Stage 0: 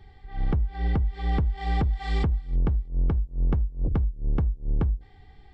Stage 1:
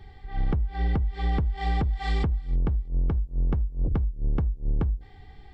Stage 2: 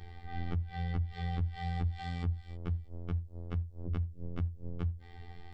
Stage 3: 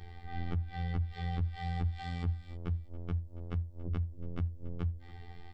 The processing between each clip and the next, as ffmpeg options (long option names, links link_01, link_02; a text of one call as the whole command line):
ffmpeg -i in.wav -af "acompressor=threshold=-25dB:ratio=6,volume=3.5dB" out.wav
ffmpeg -i in.wav -filter_complex "[0:a]acrossover=split=83|210|1700[link_01][link_02][link_03][link_04];[link_01]acompressor=threshold=-29dB:ratio=4[link_05];[link_02]acompressor=threshold=-41dB:ratio=4[link_06];[link_03]acompressor=threshold=-46dB:ratio=4[link_07];[link_04]acompressor=threshold=-51dB:ratio=4[link_08];[link_05][link_06][link_07][link_08]amix=inputs=4:normalize=0,afftfilt=real='hypot(re,im)*cos(PI*b)':imag='0':win_size=2048:overlap=0.75,volume=3dB" out.wav
ffmpeg -i in.wav -af "aecho=1:1:282:0.112" out.wav